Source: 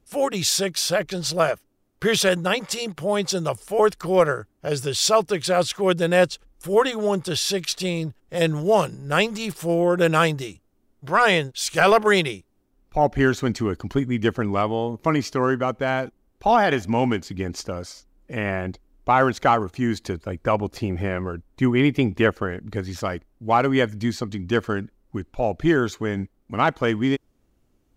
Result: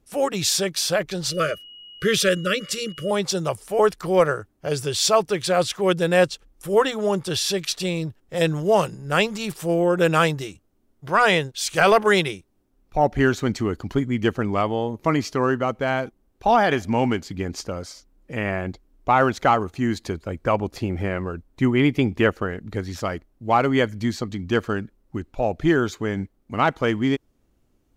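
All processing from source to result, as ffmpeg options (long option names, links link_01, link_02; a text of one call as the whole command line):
ffmpeg -i in.wav -filter_complex "[0:a]asettb=1/sr,asplit=3[link_01][link_02][link_03];[link_01]atrim=end=1.304[link_04];[link_02]atrim=start=1.3:end=3.11,asetpts=PTS-STARTPTS,afade=type=in:duration=0.004:curve=qsin,afade=type=out:start_time=1.806:duration=0.004:curve=qsin,asuperstop=centerf=840:order=12:qfactor=1.6,aeval=exprs='val(0)+0.00891*sin(2*PI*2900*n/s)':channel_layout=same[link_05];[link_03]atrim=start=3.106[link_06];[link_04][link_05]acrossfade=duration=0.004:curve1=hsin:curve2=qsin[link_07];[link_07][link_06]acrossfade=duration=0.004:curve1=qsin:curve2=hsin" out.wav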